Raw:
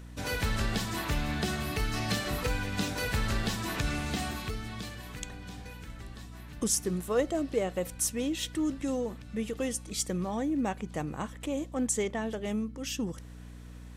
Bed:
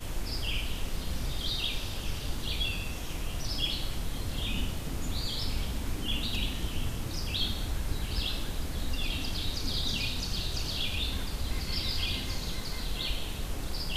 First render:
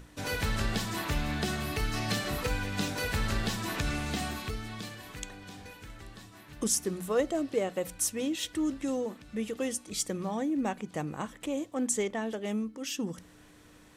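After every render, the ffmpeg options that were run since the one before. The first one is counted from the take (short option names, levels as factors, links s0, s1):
-af "bandreject=f=60:t=h:w=6,bandreject=f=120:t=h:w=6,bandreject=f=180:t=h:w=6,bandreject=f=240:t=h:w=6"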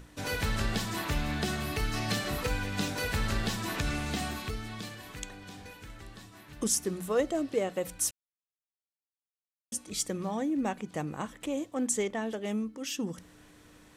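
-filter_complex "[0:a]asplit=3[s0][s1][s2];[s0]atrim=end=8.11,asetpts=PTS-STARTPTS,afade=t=out:st=8.106:d=0.004:c=hsin[s3];[s1]atrim=start=8.11:end=9.72,asetpts=PTS-STARTPTS,volume=0[s4];[s2]atrim=start=9.72,asetpts=PTS-STARTPTS,afade=t=in:d=0.004:c=hsin[s5];[s3][s4][s5]concat=n=3:v=0:a=1"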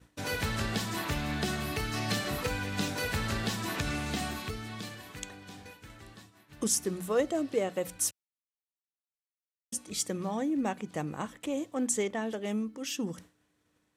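-af "agate=range=0.0224:threshold=0.00631:ratio=3:detection=peak,highpass=67"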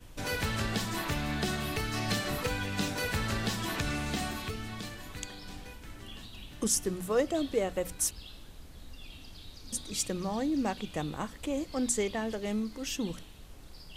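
-filter_complex "[1:a]volume=0.168[s0];[0:a][s0]amix=inputs=2:normalize=0"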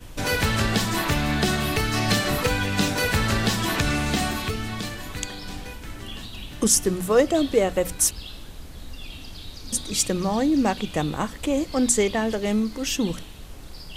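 -af "volume=2.99"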